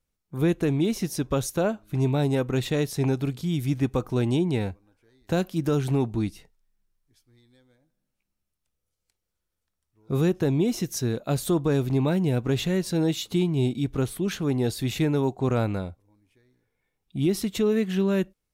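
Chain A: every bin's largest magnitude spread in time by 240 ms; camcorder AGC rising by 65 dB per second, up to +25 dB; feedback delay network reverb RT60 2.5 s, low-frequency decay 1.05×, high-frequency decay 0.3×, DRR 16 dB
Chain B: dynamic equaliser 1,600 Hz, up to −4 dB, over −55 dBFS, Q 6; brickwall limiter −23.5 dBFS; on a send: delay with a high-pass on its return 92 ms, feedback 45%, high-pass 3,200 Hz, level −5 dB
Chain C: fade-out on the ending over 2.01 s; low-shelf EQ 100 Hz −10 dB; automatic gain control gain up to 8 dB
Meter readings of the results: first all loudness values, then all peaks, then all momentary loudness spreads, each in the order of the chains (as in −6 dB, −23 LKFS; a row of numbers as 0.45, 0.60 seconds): −20.0, −32.5, −20.0 LKFS; −6.0, −20.0, −6.5 dBFS; 12, 4, 7 LU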